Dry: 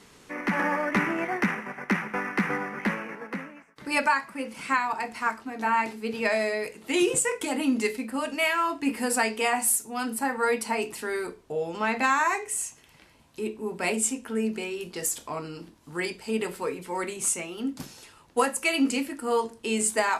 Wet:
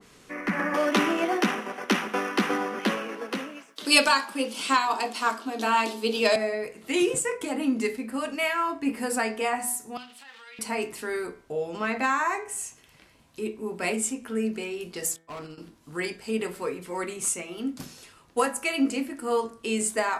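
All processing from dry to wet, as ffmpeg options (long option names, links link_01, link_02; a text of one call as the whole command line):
ffmpeg -i in.wav -filter_complex "[0:a]asettb=1/sr,asplit=3[link_01][link_02][link_03];[link_01]atrim=end=0.744[link_04];[link_02]atrim=start=0.74:end=6.36,asetpts=PTS-STARTPTS,afade=type=in:duration=0.004:curve=qsin,afade=type=out:start_time=5.616:duration=0.004:curve=qsin,highpass=frequency=240:width=0.5412,highpass=frequency=240:width=1.3066,acontrast=60,highshelf=frequency=2600:width_type=q:width=3:gain=7.5[link_05];[link_03]atrim=start=6.356[link_06];[link_04][link_05]acrossfade=duration=0.004:curve1=hsin:curve2=qsin[link_07];[link_07][link_06]acrossfade=duration=0.004:curve1=qsin:curve2=hsin,asettb=1/sr,asplit=3[link_08][link_09][link_10];[link_08]atrim=end=9.974[link_11];[link_09]atrim=start=9.97:end=10.59,asetpts=PTS-STARTPTS,afade=type=in:duration=0.004:curve=qsin,afade=type=out:start_time=0.616:duration=0.004:curve=qsin,aeval=exprs='val(0)+0.5*0.0224*sgn(val(0))':channel_layout=same,acompressor=threshold=-27dB:ratio=10:attack=3.2:release=140:knee=1:detection=peak,bandpass=frequency=3200:width_type=q:width=2.6[link_12];[link_10]atrim=start=10.586[link_13];[link_11][link_12]acrossfade=duration=0.004:curve1=hsin:curve2=qsin[link_14];[link_14][link_13]acrossfade=duration=0.004:curve1=qsin:curve2=hsin,asettb=1/sr,asplit=3[link_15][link_16][link_17];[link_15]atrim=end=15.164[link_18];[link_16]atrim=start=15.16:end=15.58,asetpts=PTS-STARTPTS,afade=type=in:duration=0.004:curve=qsin,afade=type=out:start_time=0.416:duration=0.004:curve=qsin,agate=range=-26dB:threshold=-38dB:ratio=16:release=100:detection=peak,asoftclip=type=hard:threshold=-34.5dB[link_19];[link_17]atrim=start=15.576[link_20];[link_18][link_19]acrossfade=duration=0.004:curve1=hsin:curve2=qsin[link_21];[link_21][link_20]acrossfade=duration=0.004:curve1=qsin:curve2=hsin,bandreject=frequency=880:width=12,bandreject=frequency=81.95:width_type=h:width=4,bandreject=frequency=163.9:width_type=h:width=4,bandreject=frequency=245.85:width_type=h:width=4,bandreject=frequency=327.8:width_type=h:width=4,bandreject=frequency=409.75:width_type=h:width=4,bandreject=frequency=491.7:width_type=h:width=4,bandreject=frequency=573.65:width_type=h:width=4,bandreject=frequency=655.6:width_type=h:width=4,bandreject=frequency=737.55:width_type=h:width=4,bandreject=frequency=819.5:width_type=h:width=4,bandreject=frequency=901.45:width_type=h:width=4,bandreject=frequency=983.4:width_type=h:width=4,bandreject=frequency=1065.35:width_type=h:width=4,bandreject=frequency=1147.3:width_type=h:width=4,bandreject=frequency=1229.25:width_type=h:width=4,bandreject=frequency=1311.2:width_type=h:width=4,bandreject=frequency=1393.15:width_type=h:width=4,bandreject=frequency=1475.1:width_type=h:width=4,bandreject=frequency=1557.05:width_type=h:width=4,bandreject=frequency=1639:width_type=h:width=4,bandreject=frequency=1720.95:width_type=h:width=4,bandreject=frequency=1802.9:width_type=h:width=4,bandreject=frequency=1884.85:width_type=h:width=4,bandreject=frequency=1966.8:width_type=h:width=4,bandreject=frequency=2048.75:width_type=h:width=4,bandreject=frequency=2130.7:width_type=h:width=4,bandreject=frequency=2212.65:width_type=h:width=4,bandreject=frequency=2294.6:width_type=h:width=4,bandreject=frequency=2376.55:width_type=h:width=4,adynamicequalizer=threshold=0.01:dfrequency=1800:dqfactor=0.7:tfrequency=1800:tqfactor=0.7:attack=5:release=100:ratio=0.375:range=3.5:mode=cutabove:tftype=highshelf" out.wav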